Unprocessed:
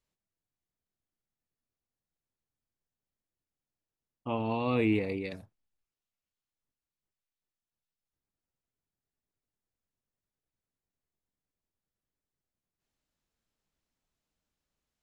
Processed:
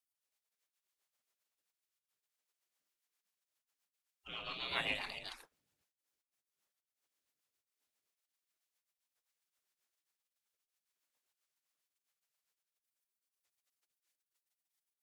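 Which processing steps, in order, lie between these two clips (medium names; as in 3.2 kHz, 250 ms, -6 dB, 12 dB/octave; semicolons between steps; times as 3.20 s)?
dynamic bell 190 Hz, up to +3 dB, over -45 dBFS, Q 6.3; spectral gate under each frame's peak -25 dB weak; rotary cabinet horn 7.5 Hz; trim +11.5 dB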